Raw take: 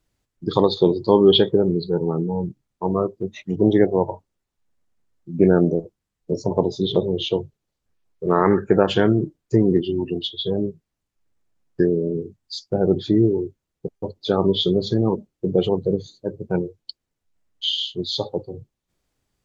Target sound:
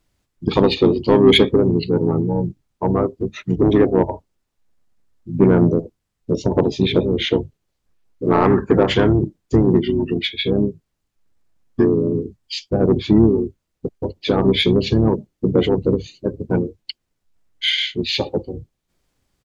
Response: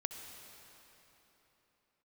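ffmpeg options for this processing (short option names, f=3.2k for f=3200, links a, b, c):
-filter_complex "[0:a]acontrast=82,asplit=3[a][b][c];[b]asetrate=22050,aresample=44100,atempo=2,volume=-18dB[d];[c]asetrate=29433,aresample=44100,atempo=1.49831,volume=-5dB[e];[a][d][e]amix=inputs=3:normalize=0,volume=-3.5dB"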